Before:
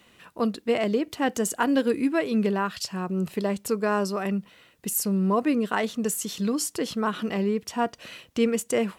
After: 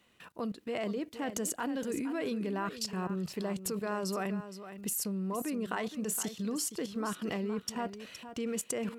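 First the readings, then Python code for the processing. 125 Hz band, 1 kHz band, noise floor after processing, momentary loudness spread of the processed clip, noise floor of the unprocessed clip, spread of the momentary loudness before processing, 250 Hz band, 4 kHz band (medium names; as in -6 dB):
-8.5 dB, -10.0 dB, -60 dBFS, 5 LU, -59 dBFS, 6 LU, -9.5 dB, -7.0 dB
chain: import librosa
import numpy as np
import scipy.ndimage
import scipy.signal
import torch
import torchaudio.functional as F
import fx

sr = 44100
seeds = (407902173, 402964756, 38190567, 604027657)

p1 = fx.level_steps(x, sr, step_db=17)
y = p1 + fx.echo_single(p1, sr, ms=467, db=-11.5, dry=0)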